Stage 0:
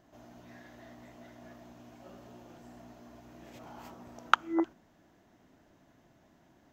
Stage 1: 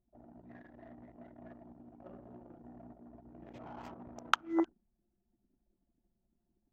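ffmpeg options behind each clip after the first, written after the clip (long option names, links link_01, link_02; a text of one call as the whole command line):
ffmpeg -i in.wav -filter_complex "[0:a]anlmdn=0.00631,acrossover=split=3700[link_01][link_02];[link_01]alimiter=limit=-12dB:level=0:latency=1:release=495[link_03];[link_03][link_02]amix=inputs=2:normalize=0,volume=1.5dB" out.wav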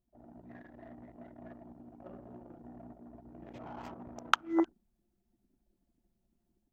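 ffmpeg -i in.wav -af "dynaudnorm=framelen=130:gausssize=3:maxgain=5dB,volume=-2.5dB" out.wav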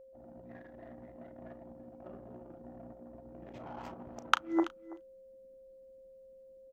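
ffmpeg -i in.wav -filter_complex "[0:a]aeval=exprs='val(0)+0.00251*sin(2*PI*530*n/s)':channel_layout=same,asplit=2[link_01][link_02];[link_02]adelay=35,volume=-14dB[link_03];[link_01][link_03]amix=inputs=2:normalize=0,aecho=1:1:330:0.112" out.wav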